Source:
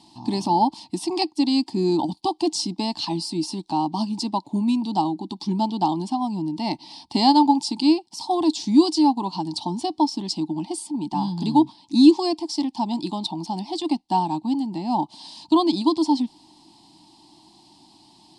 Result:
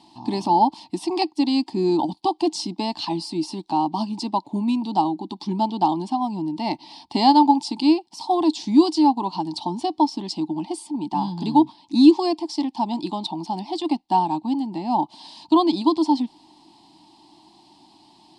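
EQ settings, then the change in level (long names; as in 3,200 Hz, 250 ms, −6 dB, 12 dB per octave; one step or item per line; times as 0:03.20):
bass and treble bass −6 dB, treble −8 dB
+2.5 dB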